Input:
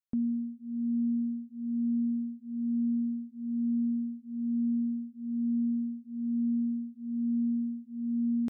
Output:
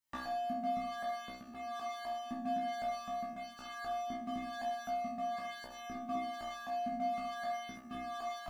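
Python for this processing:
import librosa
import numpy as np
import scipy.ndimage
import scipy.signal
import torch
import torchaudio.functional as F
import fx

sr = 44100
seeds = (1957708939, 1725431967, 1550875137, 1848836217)

p1 = fx.recorder_agc(x, sr, target_db=-30.5, rise_db_per_s=36.0, max_gain_db=30)
p2 = fx.highpass(p1, sr, hz=49.0, slope=6)
p3 = fx.level_steps(p2, sr, step_db=12)
p4 = p2 + F.gain(torch.from_numpy(p3), 3.0).numpy()
p5 = fx.tremolo_shape(p4, sr, shape='saw_up', hz=3.9, depth_pct=35)
p6 = 10.0 ** (-34.0 / 20.0) * (np.abs((p5 / 10.0 ** (-34.0 / 20.0) + 3.0) % 4.0 - 2.0) - 1.0)
p7 = fx.comb_fb(p6, sr, f0_hz=64.0, decay_s=0.5, harmonics='all', damping=0.0, mix_pct=100)
p8 = p7 + fx.room_early_taps(p7, sr, ms=(19, 66), db=(-4.5, -12.0), dry=0)
p9 = fx.comb_cascade(p8, sr, direction='falling', hz=0.47)
y = F.gain(torch.from_numpy(p9), 17.0).numpy()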